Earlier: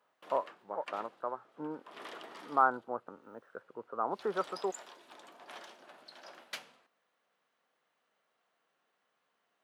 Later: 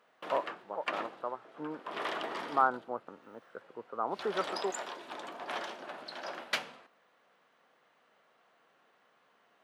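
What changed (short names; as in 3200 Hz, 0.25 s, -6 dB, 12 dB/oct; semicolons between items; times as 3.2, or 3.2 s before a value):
background +12.0 dB; master: add high shelf 5100 Hz -10.5 dB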